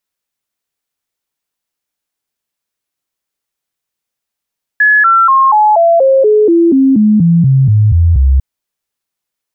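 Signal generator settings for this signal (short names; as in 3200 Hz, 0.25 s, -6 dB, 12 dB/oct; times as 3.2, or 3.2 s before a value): stepped sine 1700 Hz down, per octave 3, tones 15, 0.24 s, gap 0.00 s -4.5 dBFS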